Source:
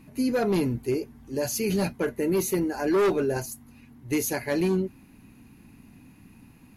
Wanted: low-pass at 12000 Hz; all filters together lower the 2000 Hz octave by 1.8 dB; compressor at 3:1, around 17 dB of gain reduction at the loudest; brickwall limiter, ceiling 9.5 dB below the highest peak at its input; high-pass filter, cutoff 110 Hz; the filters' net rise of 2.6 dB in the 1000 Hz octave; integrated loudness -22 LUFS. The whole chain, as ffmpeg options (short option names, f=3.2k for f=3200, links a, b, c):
-af "highpass=110,lowpass=12k,equalizer=f=1k:t=o:g=4.5,equalizer=f=2k:t=o:g=-4,acompressor=threshold=-44dB:ratio=3,volume=25.5dB,alimiter=limit=-12.5dB:level=0:latency=1"